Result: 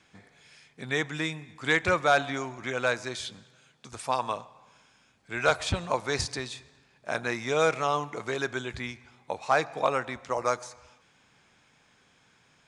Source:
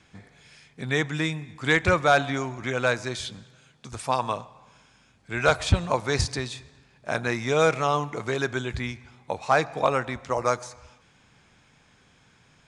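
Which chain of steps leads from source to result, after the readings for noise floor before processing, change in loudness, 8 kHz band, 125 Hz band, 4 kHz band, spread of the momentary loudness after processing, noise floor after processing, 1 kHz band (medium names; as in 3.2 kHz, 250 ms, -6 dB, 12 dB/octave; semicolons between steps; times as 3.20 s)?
-60 dBFS, -3.5 dB, -2.5 dB, -8.5 dB, -2.5 dB, 14 LU, -64 dBFS, -3.0 dB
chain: bass shelf 160 Hz -10 dB; trim -2.5 dB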